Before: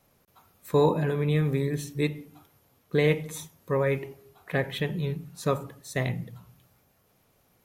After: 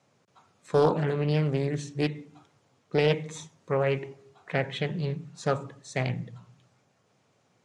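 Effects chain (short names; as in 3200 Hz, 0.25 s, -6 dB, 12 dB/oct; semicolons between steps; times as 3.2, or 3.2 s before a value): elliptic band-pass 110–7400 Hz, stop band 40 dB; Doppler distortion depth 0.32 ms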